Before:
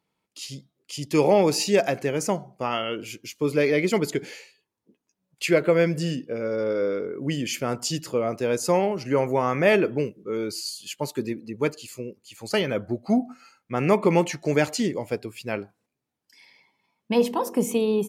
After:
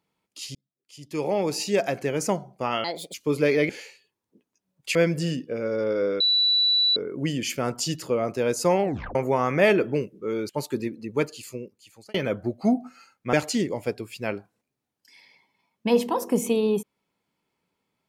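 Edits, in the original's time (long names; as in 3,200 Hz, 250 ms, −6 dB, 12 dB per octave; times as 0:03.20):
0:00.55–0:02.27: fade in
0:02.84–0:03.29: play speed 149%
0:03.84–0:04.23: remove
0:05.49–0:05.75: remove
0:07.00: insert tone 3,950 Hz −17.5 dBFS 0.76 s
0:08.87: tape stop 0.32 s
0:10.53–0:10.94: remove
0:11.96–0:12.59: fade out
0:13.78–0:14.58: remove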